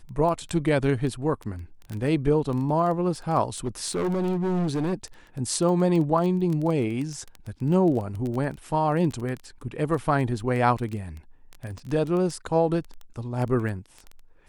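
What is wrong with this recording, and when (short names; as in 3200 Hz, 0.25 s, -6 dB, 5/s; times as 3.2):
crackle 11/s -28 dBFS
3.58–4.94 clipped -22.5 dBFS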